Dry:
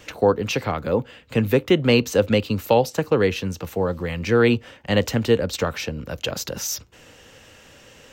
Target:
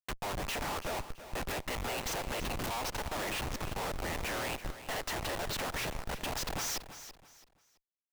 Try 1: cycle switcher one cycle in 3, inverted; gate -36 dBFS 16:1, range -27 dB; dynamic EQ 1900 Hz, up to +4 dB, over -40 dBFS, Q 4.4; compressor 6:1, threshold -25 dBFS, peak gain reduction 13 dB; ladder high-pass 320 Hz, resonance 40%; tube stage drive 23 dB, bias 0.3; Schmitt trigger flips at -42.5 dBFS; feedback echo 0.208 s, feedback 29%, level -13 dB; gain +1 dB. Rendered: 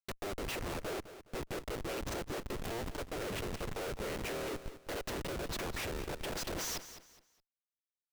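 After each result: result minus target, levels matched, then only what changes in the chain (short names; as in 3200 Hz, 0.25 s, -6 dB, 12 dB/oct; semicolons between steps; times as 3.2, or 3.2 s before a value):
compressor: peak gain reduction +13 dB; echo 0.124 s early; 500 Hz band +3.5 dB
remove: compressor 6:1, threshold -25 dBFS, peak gain reduction 13 dB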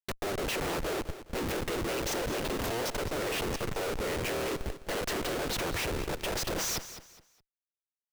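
echo 0.124 s early; 500 Hz band +3.5 dB
change: feedback echo 0.332 s, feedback 29%, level -13 dB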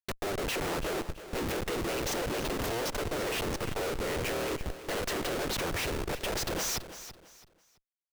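500 Hz band +3.5 dB
change: ladder high-pass 700 Hz, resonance 40%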